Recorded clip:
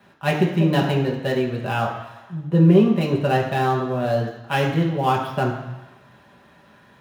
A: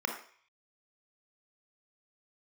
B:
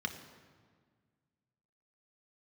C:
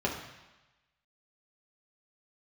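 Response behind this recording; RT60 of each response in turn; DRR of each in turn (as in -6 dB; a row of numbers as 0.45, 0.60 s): C; 0.50, 1.7, 1.1 s; 2.5, 5.0, -3.0 dB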